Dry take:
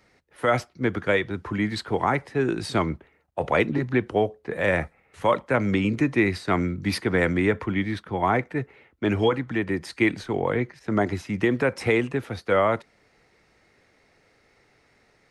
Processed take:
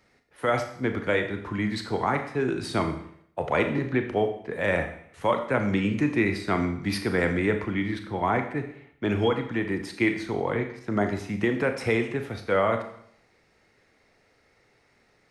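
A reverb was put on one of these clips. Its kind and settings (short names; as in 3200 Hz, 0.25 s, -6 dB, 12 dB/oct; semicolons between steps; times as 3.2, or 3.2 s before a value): Schroeder reverb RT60 0.66 s, combs from 27 ms, DRR 6 dB; gain -3 dB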